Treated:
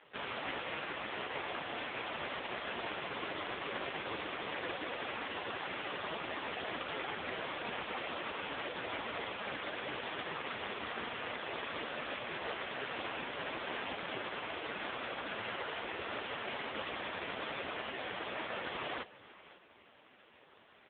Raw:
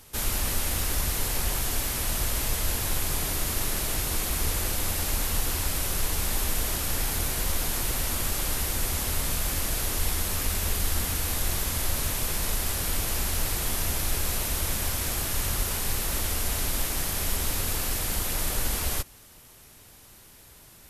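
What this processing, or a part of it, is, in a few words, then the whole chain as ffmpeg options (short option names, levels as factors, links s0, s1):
satellite phone: -af "highpass=320,lowpass=3400,aecho=1:1:544:0.119,volume=1.41" -ar 8000 -c:a libopencore_amrnb -b:a 4750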